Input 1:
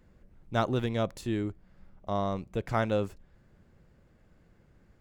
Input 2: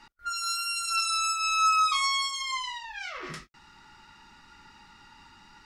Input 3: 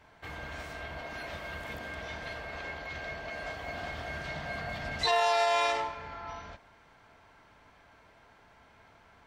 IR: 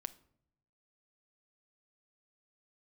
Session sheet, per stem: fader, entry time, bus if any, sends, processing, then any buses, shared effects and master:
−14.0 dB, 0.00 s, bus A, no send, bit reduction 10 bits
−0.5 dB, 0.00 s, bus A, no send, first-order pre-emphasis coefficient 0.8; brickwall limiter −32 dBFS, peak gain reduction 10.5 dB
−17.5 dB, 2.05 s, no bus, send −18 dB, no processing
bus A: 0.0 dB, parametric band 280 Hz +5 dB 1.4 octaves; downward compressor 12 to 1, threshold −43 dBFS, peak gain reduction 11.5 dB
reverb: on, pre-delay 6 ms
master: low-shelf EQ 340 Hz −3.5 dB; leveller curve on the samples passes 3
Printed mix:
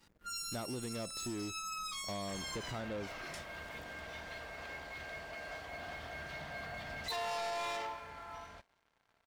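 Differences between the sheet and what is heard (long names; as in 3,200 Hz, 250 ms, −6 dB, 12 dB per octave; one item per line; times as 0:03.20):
stem 1: missing bit reduction 10 bits
stem 2 −0.5 dB → −11.5 dB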